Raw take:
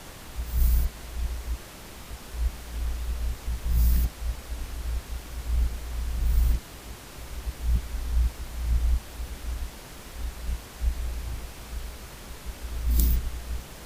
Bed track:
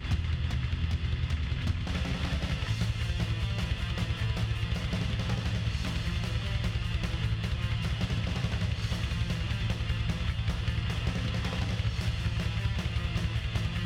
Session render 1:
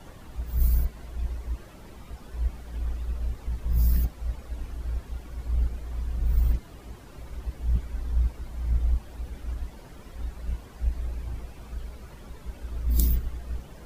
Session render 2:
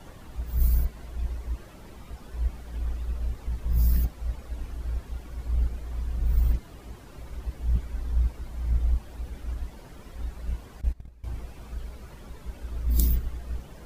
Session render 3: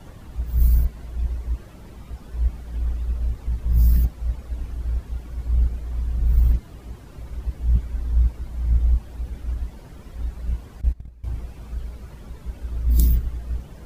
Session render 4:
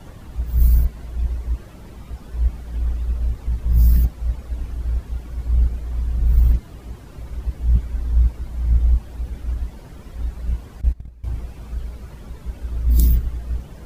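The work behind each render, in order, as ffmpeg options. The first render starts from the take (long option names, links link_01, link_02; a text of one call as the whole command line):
ffmpeg -i in.wav -af "afftdn=noise_reduction=12:noise_floor=-44" out.wav
ffmpeg -i in.wav -filter_complex "[0:a]asettb=1/sr,asplit=3[link_01][link_02][link_03];[link_01]atrim=end=10.814[link_04];[link_02]atrim=start=10.81:end=11.24,asetpts=PTS-STARTPTS,afade=type=in:duration=0.004:curve=qsin,afade=type=out:start_time=0.426:duration=0.004:curve=qsin,agate=range=-19dB:threshold=-27dB:ratio=16:release=100:detection=peak[link_05];[link_03]atrim=start=11.236[link_06];[link_04][link_05]acrossfade=duration=0.004:curve1=hsin:curve2=qsin[link_07];[link_07][link_06]acrossfade=duration=0.004:curve1=qsin:curve2=hsin" out.wav
ffmpeg -i in.wav -af "equalizer=frequency=83:width=0.36:gain=6.5" out.wav
ffmpeg -i in.wav -af "volume=2.5dB,alimiter=limit=-1dB:level=0:latency=1" out.wav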